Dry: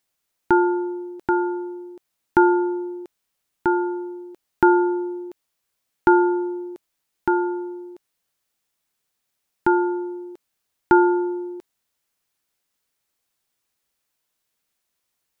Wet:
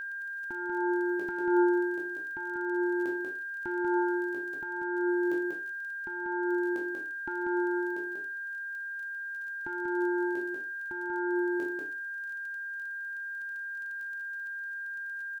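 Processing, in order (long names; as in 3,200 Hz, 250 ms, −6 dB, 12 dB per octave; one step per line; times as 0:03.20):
peak hold with a decay on every bin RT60 0.38 s
compressor whose output falls as the input rises −28 dBFS, ratio −1
on a send: single-tap delay 190 ms −3.5 dB
on the sum: surface crackle 22 per second −38 dBFS
flanger 0.14 Hz, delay 3.3 ms, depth 5.2 ms, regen +60%
steady tone 1,600 Hz −35 dBFS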